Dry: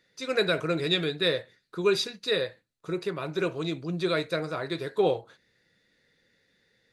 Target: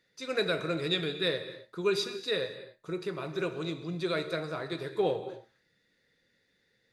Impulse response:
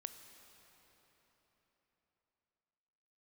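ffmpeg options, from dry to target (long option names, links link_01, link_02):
-filter_complex "[1:a]atrim=start_sample=2205,afade=type=out:start_time=0.32:duration=0.01,atrim=end_sample=14553,asetrate=41895,aresample=44100[link_01];[0:a][link_01]afir=irnorm=-1:irlink=0"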